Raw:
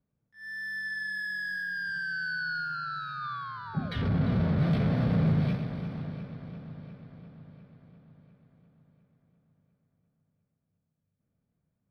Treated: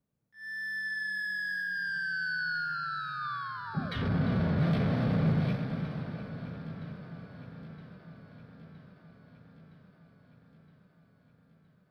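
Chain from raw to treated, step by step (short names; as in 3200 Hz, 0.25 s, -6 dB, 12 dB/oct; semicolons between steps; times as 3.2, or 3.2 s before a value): low shelf 110 Hz -6 dB; on a send: echo with dull and thin repeats by turns 0.483 s, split 1100 Hz, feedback 79%, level -13.5 dB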